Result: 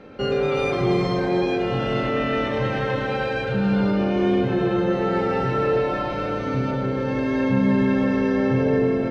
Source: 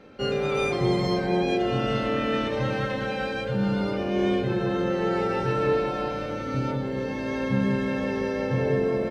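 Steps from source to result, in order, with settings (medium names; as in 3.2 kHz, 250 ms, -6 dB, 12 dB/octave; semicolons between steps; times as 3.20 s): low-pass 3.1 kHz 6 dB/octave; in parallel at +2.5 dB: peak limiter -24.5 dBFS, peak gain reduction 11.5 dB; on the sum: multi-head delay 106 ms, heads first and third, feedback 45%, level -9 dB; trim -1.5 dB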